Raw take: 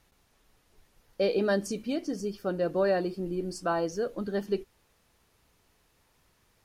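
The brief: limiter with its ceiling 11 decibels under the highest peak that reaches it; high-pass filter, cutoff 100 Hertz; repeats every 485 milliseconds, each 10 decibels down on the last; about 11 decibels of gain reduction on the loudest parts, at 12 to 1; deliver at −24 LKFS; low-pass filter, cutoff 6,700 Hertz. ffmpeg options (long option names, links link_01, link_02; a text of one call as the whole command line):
ffmpeg -i in.wav -af "highpass=100,lowpass=6700,acompressor=threshold=-33dB:ratio=12,alimiter=level_in=10.5dB:limit=-24dB:level=0:latency=1,volume=-10.5dB,aecho=1:1:485|970|1455|1940:0.316|0.101|0.0324|0.0104,volume=19dB" out.wav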